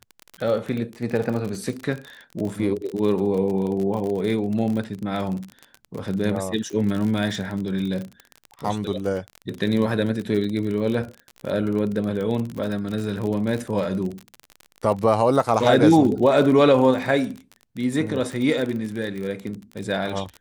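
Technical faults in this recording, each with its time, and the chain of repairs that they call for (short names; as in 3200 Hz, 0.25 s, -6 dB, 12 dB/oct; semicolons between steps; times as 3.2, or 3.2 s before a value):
crackle 39/s -27 dBFS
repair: de-click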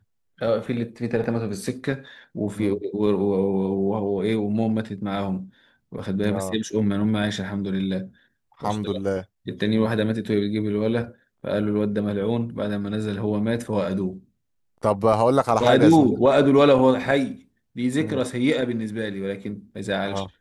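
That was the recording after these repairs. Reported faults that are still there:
none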